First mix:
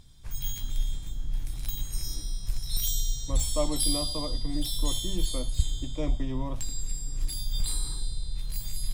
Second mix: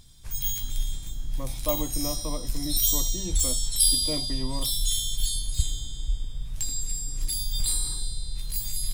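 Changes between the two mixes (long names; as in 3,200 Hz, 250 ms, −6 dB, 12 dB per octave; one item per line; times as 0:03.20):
speech: entry −1.90 s
master: add high-shelf EQ 3,800 Hz +9 dB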